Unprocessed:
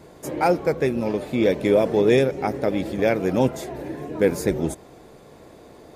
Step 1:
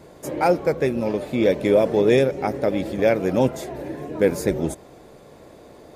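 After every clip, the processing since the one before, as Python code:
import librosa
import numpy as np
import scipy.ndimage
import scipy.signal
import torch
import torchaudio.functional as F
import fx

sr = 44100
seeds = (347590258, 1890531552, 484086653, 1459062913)

y = fx.peak_eq(x, sr, hz=570.0, db=4.0, octaves=0.21)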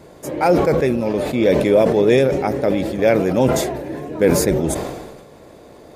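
y = fx.sustainer(x, sr, db_per_s=42.0)
y = y * 10.0 ** (2.5 / 20.0)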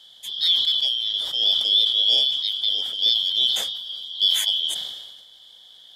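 y = fx.band_shuffle(x, sr, order='3412')
y = y * 10.0 ** (-5.5 / 20.0)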